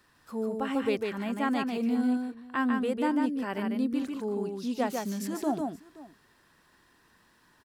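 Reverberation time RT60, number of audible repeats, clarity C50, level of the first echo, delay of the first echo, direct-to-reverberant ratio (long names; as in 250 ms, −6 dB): no reverb audible, 2, no reverb audible, −4.0 dB, 148 ms, no reverb audible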